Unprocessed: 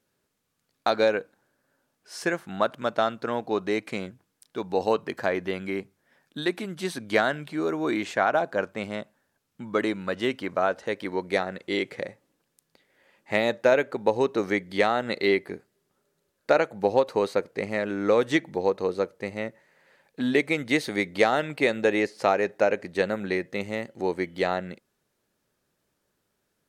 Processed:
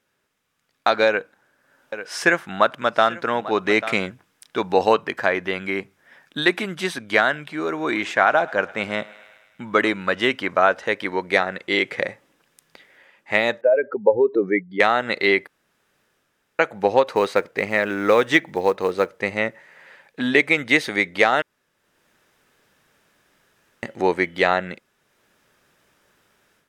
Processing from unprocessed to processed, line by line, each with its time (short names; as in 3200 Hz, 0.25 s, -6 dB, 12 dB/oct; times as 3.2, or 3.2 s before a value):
1.08–4.05 echo 0.842 s -17 dB
7.45–9.88 thinning echo 0.105 s, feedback 71%, level -21.5 dB
13.61–14.8 spectral contrast raised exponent 2.2
15.47–16.59 room tone
17.14–19.19 short-mantissa float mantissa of 4-bit
21.42–23.83 room tone
whole clip: bell 1900 Hz +9 dB 2.8 oct; notch 4300 Hz, Q 13; AGC gain up to 10 dB; gain -1 dB